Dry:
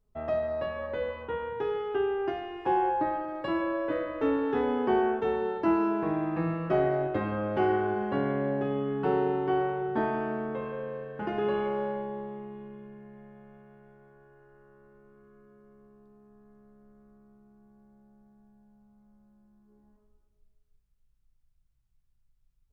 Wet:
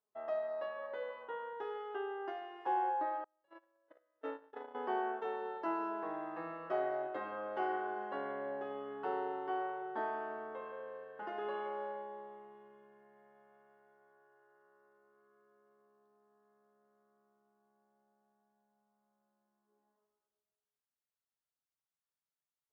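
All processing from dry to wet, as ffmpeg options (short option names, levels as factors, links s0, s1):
-filter_complex "[0:a]asettb=1/sr,asplit=3[s0][s1][s2];[s0]atrim=end=3.244[s3];[s1]atrim=start=3.24:end=4.75,asetpts=PTS-STARTPTS,afade=t=in:d=0.004:c=qsin,afade=t=out:st=1.506:d=0.004:c=qsin,bandreject=f=1100:w=10,agate=range=0.0158:threshold=0.0501:ratio=16:release=100:detection=peak[s4];[s2]atrim=start=4.746[s5];[s3][s4]acrossfade=d=0.004:c1=hsin:c2=qsin[s6];[s6][s5]acrossfade=d=0.004:c1=qsin:c2=hsin,highpass=800,tiltshelf=f=1100:g=5.5,bandreject=f=2400:w=6.5,volume=0.562"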